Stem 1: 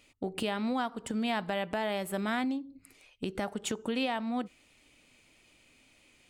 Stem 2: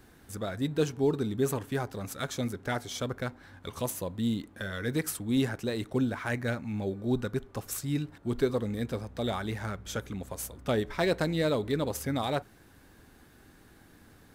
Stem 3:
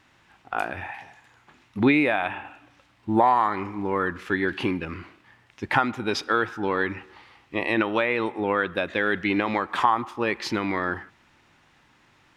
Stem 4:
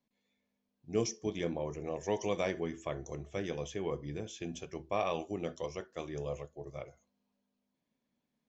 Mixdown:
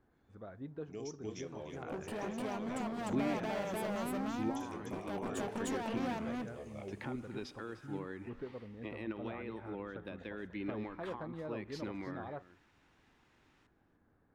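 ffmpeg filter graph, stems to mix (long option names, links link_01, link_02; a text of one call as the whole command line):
ffmpeg -i stem1.wav -i stem2.wav -i stem3.wav -i stem4.wav -filter_complex "[0:a]equalizer=frequency=125:width_type=o:width=1:gain=5,equalizer=frequency=250:width_type=o:width=1:gain=6,equalizer=frequency=500:width_type=o:width=1:gain=6,equalizer=frequency=1000:width_type=o:width=1:gain=5,equalizer=frequency=2000:width_type=o:width=1:gain=-8,equalizer=frequency=4000:width_type=o:width=1:gain=-5,dynaudnorm=framelen=150:gausssize=17:maxgain=4dB,volume=27dB,asoftclip=hard,volume=-27dB,adelay=1700,volume=-5dB,asplit=2[link_01][link_02];[link_02]volume=-5dB[link_03];[1:a]lowpass=1300,volume=-12.5dB[link_04];[2:a]acrossover=split=370[link_05][link_06];[link_06]acompressor=threshold=-36dB:ratio=6[link_07];[link_05][link_07]amix=inputs=2:normalize=0,adelay=1300,volume=-11.5dB,asplit=2[link_08][link_09];[link_09]volume=-16dB[link_10];[3:a]alimiter=level_in=1.5dB:limit=-24dB:level=0:latency=1:release=252,volume=-1.5dB,volume=-5dB,asplit=2[link_11][link_12];[link_12]volume=-6dB[link_13];[link_01][link_04][link_11]amix=inputs=3:normalize=0,alimiter=level_in=8dB:limit=-24dB:level=0:latency=1:release=483,volume=-8dB,volume=0dB[link_14];[link_03][link_10][link_13]amix=inputs=3:normalize=0,aecho=0:1:302:1[link_15];[link_08][link_14][link_15]amix=inputs=3:normalize=0,lowshelf=frequency=340:gain=-3.5" out.wav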